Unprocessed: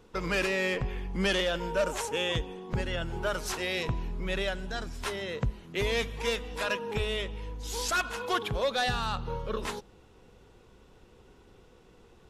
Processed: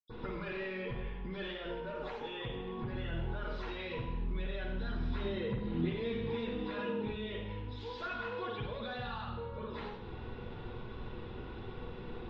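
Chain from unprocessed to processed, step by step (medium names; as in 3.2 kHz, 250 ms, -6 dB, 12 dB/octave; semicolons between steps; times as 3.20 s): dynamic bell 450 Hz, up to +5 dB, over -44 dBFS, Q 3.7; peak limiter -33.5 dBFS, peak gain reduction 16.5 dB; compression 10:1, threshold -49 dBFS, peak gain reduction 13 dB; 4.91–7.23 s: small resonant body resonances 210/300/3700 Hz, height 8 dB, ringing for 30 ms; reverberation RT60 0.80 s, pre-delay 78 ms, DRR -60 dB; trim +8 dB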